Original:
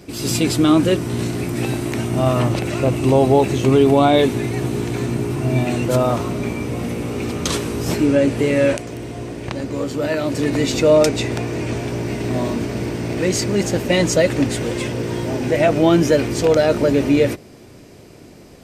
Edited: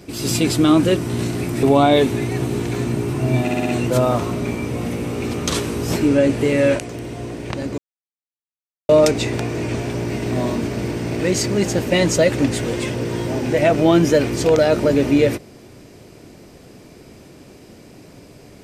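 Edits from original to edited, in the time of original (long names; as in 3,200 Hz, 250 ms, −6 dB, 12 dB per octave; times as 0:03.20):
0:01.63–0:03.85: remove
0:05.64: stutter 0.06 s, 5 plays
0:09.76–0:10.87: silence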